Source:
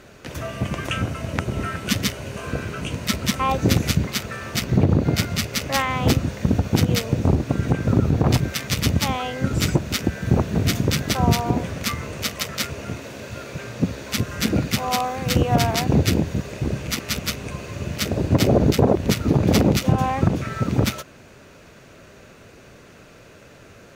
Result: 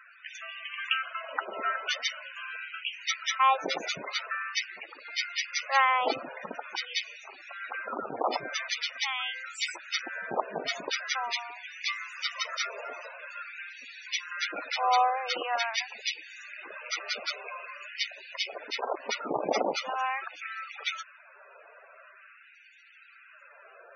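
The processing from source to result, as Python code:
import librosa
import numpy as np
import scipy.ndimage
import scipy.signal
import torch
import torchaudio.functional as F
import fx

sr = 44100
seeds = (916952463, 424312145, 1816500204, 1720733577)

y = fx.filter_lfo_highpass(x, sr, shape='sine', hz=0.45, low_hz=730.0, high_hz=2200.0, q=1.1)
y = fx.dmg_noise_band(y, sr, seeds[0], low_hz=930.0, high_hz=8200.0, level_db=-43.0, at=(11.85, 13.05), fade=0.02)
y = fx.spec_topn(y, sr, count=32)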